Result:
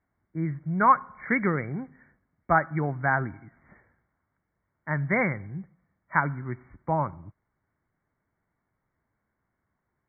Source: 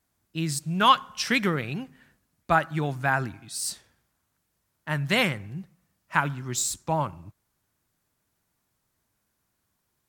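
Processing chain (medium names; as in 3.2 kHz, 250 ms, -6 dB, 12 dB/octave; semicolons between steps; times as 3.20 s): brick-wall FIR low-pass 2.3 kHz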